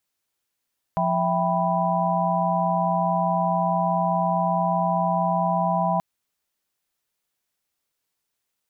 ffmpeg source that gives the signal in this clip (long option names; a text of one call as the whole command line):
ffmpeg -f lavfi -i "aevalsrc='0.0562*(sin(2*PI*174.61*t)+sin(2*PI*659.26*t)+sin(2*PI*783.99*t)+sin(2*PI*987.77*t))':duration=5.03:sample_rate=44100" out.wav